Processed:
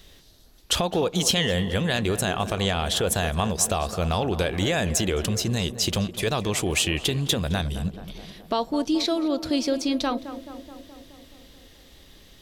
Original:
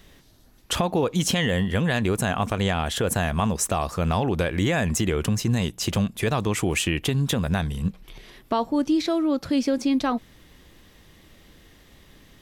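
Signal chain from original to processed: ten-band graphic EQ 125 Hz -5 dB, 250 Hz -5 dB, 1 kHz -4 dB, 2 kHz -4 dB, 4 kHz +5 dB; on a send: tape echo 213 ms, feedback 75%, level -11 dB, low-pass 1.5 kHz; on the sum: trim +2 dB

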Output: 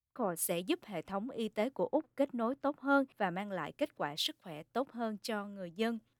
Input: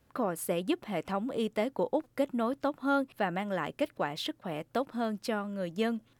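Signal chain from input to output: three bands expanded up and down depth 100%; trim -4 dB

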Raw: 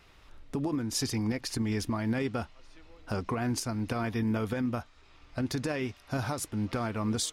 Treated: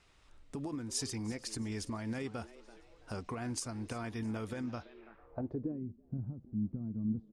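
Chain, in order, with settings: frequency-shifting echo 333 ms, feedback 36%, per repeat +110 Hz, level -18 dB; low-pass sweep 8.6 kHz -> 200 Hz, 4.59–5.84 s; trim -8.5 dB

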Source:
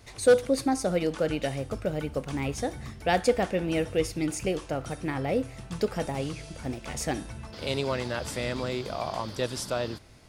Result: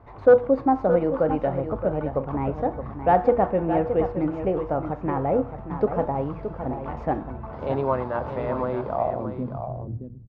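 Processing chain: median filter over 5 samples; low-pass sweep 1 kHz -> 120 Hz, 8.93–9.64 s; de-hum 120.4 Hz, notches 27; on a send: delay 620 ms -9 dB; on the sum: trim +3 dB

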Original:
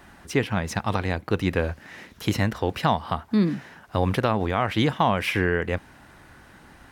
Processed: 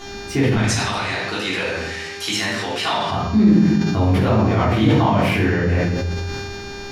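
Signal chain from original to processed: 0.55–3.09 s: frequency weighting ITU-R 468; mains buzz 400 Hz, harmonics 17, -44 dBFS -2 dB/octave; simulated room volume 300 m³, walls mixed, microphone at 3.3 m; compression 1.5:1, threshold -34 dBFS, peak gain reduction 10.5 dB; bass shelf 380 Hz +6 dB; decay stretcher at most 21 dB/s

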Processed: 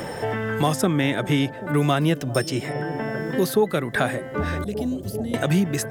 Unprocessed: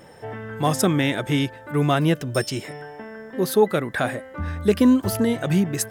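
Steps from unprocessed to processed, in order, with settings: 4.64–5.34 s: amplifier tone stack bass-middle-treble 10-0-1; bucket-brigade echo 392 ms, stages 2048, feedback 79%, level -19 dB; three bands compressed up and down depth 70%

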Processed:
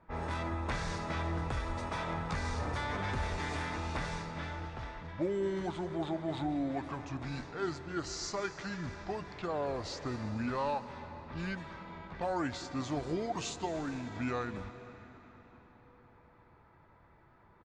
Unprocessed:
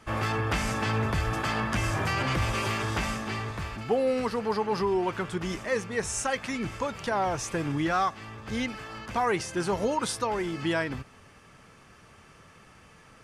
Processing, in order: resampled via 32 kHz; level-controlled noise filter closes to 2.1 kHz, open at -26 dBFS; reverberation RT60 3.4 s, pre-delay 75 ms, DRR 11 dB; tape speed -25%; trim -8 dB

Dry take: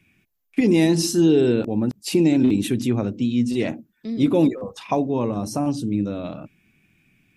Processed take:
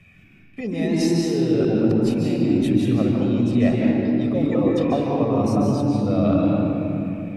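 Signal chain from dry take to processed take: low-pass 2.6 kHz 6 dB/octave; reverse; compression 10:1, threshold -31 dBFS, peak gain reduction 18.5 dB; reverse; reverberation RT60 2.7 s, pre-delay 139 ms, DRR -2 dB; trim +8.5 dB

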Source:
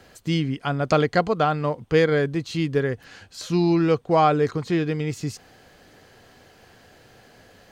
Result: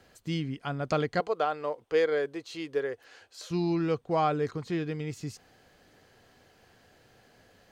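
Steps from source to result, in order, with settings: 1.20–3.51 s: resonant low shelf 280 Hz -13.5 dB, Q 1.5; trim -8.5 dB

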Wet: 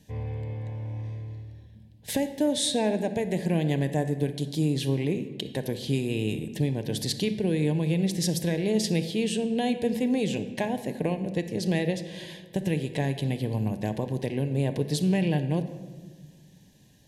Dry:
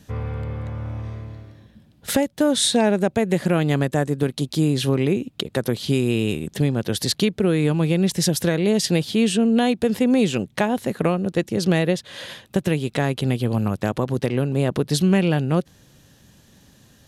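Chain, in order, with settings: Butterworth band-stop 1.3 kHz, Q 2; on a send: reverberation RT60 1.5 s, pre-delay 7 ms, DRR 8.5 dB; on the sum: trim -7.5 dB

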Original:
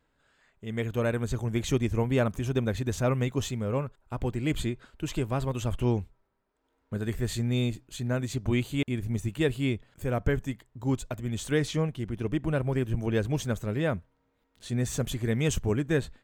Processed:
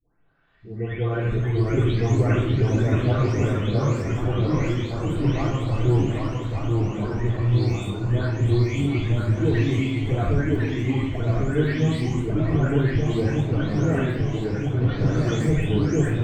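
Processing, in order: delay that grows with frequency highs late, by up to 534 ms; boxcar filter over 4 samples; simulated room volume 2100 m³, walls furnished, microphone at 3.5 m; ever faster or slower copies 483 ms, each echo -1 st, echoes 2; band-passed feedback delay 1173 ms, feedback 73%, band-pass 900 Hz, level -7 dB

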